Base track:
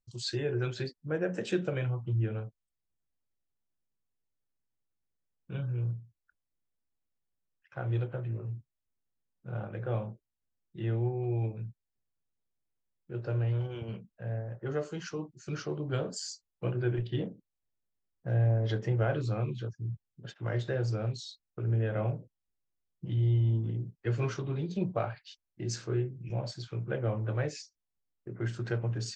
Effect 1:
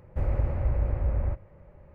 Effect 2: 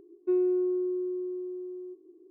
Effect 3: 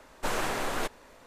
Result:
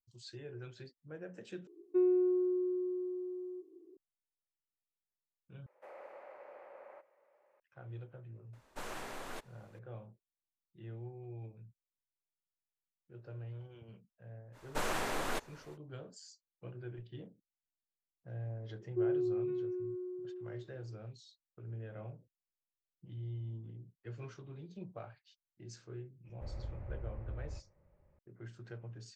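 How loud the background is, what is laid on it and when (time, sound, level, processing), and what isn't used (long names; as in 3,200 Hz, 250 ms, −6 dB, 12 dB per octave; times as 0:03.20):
base track −15.5 dB
0:01.67: overwrite with 2 −3 dB
0:05.66: overwrite with 1 −10 dB + high-pass filter 510 Hz 24 dB per octave
0:08.53: mix in 3 −13.5 dB
0:14.52: mix in 3 −5 dB, fades 0.05 s
0:18.69: mix in 2 −6.5 dB + multiband delay without the direct sound lows, highs 510 ms, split 1,100 Hz
0:26.25: mix in 1 −17 dB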